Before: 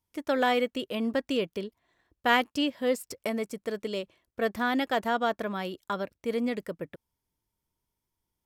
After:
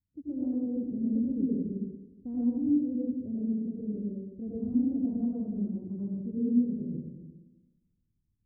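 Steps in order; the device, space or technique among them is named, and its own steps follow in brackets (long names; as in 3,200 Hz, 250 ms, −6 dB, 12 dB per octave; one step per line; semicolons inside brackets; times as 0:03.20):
next room (low-pass filter 250 Hz 24 dB per octave; convolution reverb RT60 1.2 s, pre-delay 81 ms, DRR −7.5 dB)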